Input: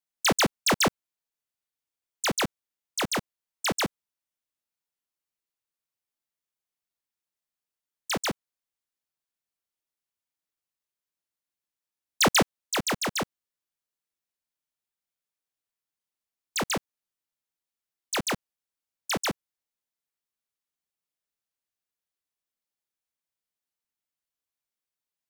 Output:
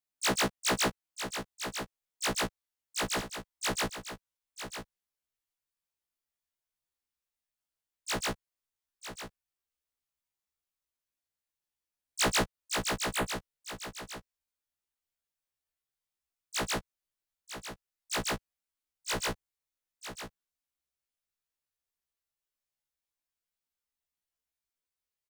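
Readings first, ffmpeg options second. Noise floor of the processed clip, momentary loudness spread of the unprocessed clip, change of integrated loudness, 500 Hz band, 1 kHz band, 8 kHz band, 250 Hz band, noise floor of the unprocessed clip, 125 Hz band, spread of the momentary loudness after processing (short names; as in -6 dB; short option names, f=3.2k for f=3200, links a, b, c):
under -85 dBFS, 11 LU, -6.0 dB, -4.5 dB, -4.5 dB, -3.5 dB, -6.0 dB, under -85 dBFS, -4.0 dB, 17 LU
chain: -af "aecho=1:1:949:0.266,acompressor=threshold=-30dB:ratio=1.5,asubboost=boost=3:cutoff=97,afftfilt=real='re*1.73*eq(mod(b,3),0)':imag='im*1.73*eq(mod(b,3),0)':win_size=2048:overlap=0.75"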